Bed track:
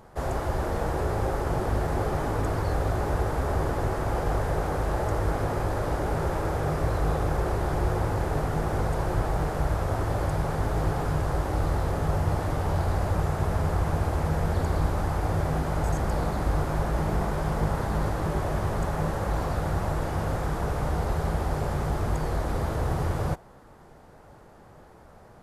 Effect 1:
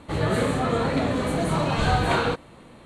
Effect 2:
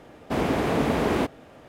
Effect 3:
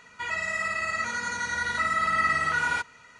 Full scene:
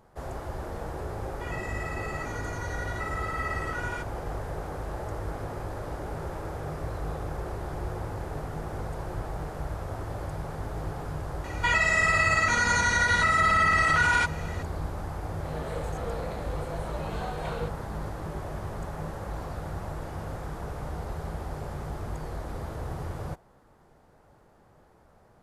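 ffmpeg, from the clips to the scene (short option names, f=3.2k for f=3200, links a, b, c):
-filter_complex "[3:a]asplit=2[a][b];[0:a]volume=-8dB[c];[a]bandreject=f=4.1k:w=5.6[d];[b]alimiter=level_in=23dB:limit=-1dB:release=50:level=0:latency=1[e];[1:a]lowshelf=f=340:t=q:w=3:g=-12[f];[d]atrim=end=3.19,asetpts=PTS-STARTPTS,volume=-9.5dB,afade=t=in:d=0.004:c=hsin,afade=t=out:st=3.186:d=0.004:c=hsin,adelay=1210[g];[e]atrim=end=3.19,asetpts=PTS-STARTPTS,volume=-14dB,afade=t=in:d=0.004:c=hsin,afade=t=out:st=3.186:d=0.004:c=hsin,adelay=11440[h];[f]atrim=end=2.85,asetpts=PTS-STARTPTS,volume=-16.5dB,afade=t=in:d=0.004:c=hsin,afade=t=out:st=2.846:d=0.004:c=hsin,adelay=15340[i];[c][g][h][i]amix=inputs=4:normalize=0"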